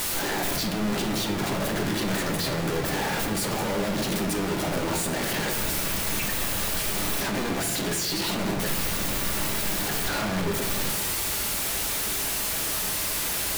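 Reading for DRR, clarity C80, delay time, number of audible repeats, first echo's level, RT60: 1.5 dB, 9.0 dB, none, none, none, 0.85 s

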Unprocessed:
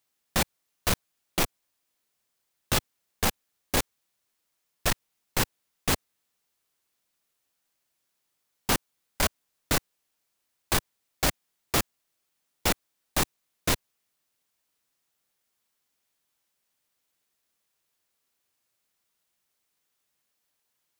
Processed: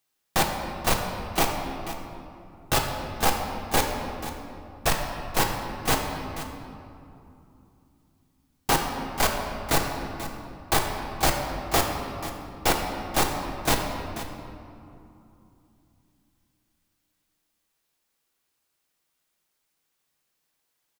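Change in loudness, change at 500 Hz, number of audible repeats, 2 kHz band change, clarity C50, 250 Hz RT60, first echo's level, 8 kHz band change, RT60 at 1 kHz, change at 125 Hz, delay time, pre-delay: +2.0 dB, +6.0 dB, 1, +3.5 dB, 3.5 dB, 3.8 s, -13.5 dB, +1.0 dB, 2.7 s, +3.0 dB, 0.487 s, 3 ms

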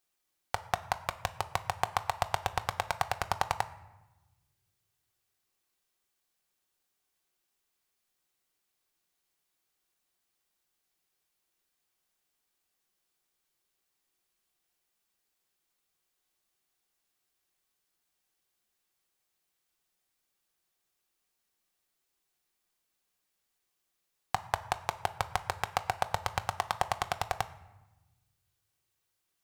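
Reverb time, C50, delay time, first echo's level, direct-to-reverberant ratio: 1.0 s, 15.5 dB, none, none, 8.0 dB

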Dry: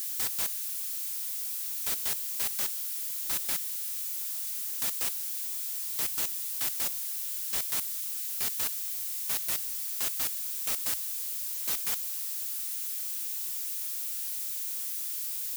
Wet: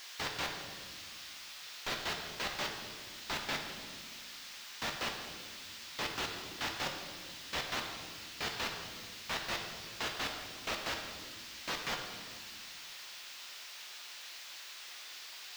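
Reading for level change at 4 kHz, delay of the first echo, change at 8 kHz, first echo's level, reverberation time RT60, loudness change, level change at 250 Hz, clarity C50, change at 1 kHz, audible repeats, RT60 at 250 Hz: +1.0 dB, none, -14.0 dB, none, 1.6 s, -10.0 dB, +6.0 dB, 5.0 dB, +6.5 dB, none, 2.6 s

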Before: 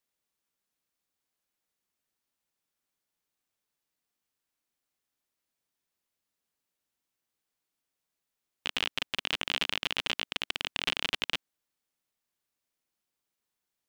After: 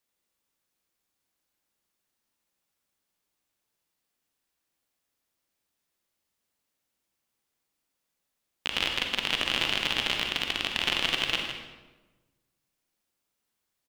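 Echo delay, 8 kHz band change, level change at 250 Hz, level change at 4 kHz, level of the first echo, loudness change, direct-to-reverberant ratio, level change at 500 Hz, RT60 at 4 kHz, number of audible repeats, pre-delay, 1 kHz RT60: 0.158 s, +4.0 dB, +5.5 dB, +4.5 dB, -9.5 dB, +4.5 dB, 2.0 dB, +5.0 dB, 0.85 s, 1, 37 ms, 1.1 s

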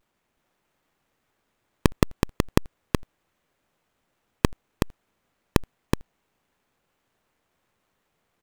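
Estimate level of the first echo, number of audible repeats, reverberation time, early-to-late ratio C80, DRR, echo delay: -4.0 dB, 1, none, none, none, 0.373 s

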